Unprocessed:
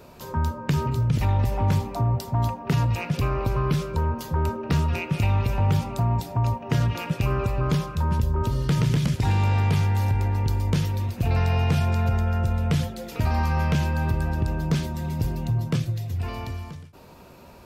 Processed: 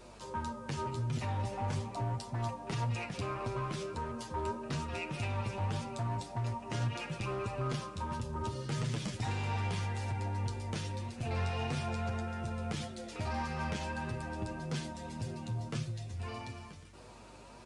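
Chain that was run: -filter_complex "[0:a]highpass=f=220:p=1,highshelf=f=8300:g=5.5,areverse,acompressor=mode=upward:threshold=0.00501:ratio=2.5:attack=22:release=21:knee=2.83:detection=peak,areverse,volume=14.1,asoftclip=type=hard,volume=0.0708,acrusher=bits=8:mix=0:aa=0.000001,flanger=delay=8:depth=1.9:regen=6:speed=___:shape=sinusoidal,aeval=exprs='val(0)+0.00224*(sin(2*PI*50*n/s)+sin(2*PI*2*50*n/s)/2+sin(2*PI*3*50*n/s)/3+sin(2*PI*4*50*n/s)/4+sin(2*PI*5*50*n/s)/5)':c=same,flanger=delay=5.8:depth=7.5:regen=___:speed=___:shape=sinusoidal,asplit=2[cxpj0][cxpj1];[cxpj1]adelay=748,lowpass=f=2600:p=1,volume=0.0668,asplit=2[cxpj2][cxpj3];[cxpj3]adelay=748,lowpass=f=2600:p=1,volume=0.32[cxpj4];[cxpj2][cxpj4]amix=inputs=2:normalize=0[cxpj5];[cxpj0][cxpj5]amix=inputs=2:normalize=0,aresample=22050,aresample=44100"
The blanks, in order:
1.7, 84, 0.41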